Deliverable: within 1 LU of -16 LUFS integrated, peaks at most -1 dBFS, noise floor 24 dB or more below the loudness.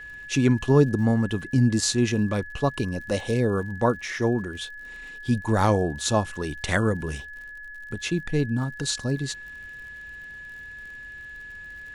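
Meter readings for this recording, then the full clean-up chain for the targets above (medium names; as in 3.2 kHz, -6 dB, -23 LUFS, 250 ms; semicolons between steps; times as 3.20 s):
tick rate 56 per s; steady tone 1.7 kHz; tone level -38 dBFS; loudness -24.5 LUFS; peak level -6.0 dBFS; loudness target -16.0 LUFS
-> de-click; band-stop 1.7 kHz, Q 30; trim +8.5 dB; peak limiter -1 dBFS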